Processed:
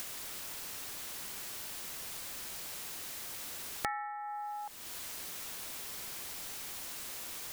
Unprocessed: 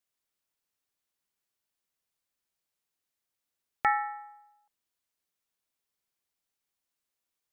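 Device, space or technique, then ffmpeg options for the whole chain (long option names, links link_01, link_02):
upward and downward compression: -af "acompressor=mode=upward:threshold=-34dB:ratio=2.5,acompressor=threshold=-53dB:ratio=5,volume=15.5dB"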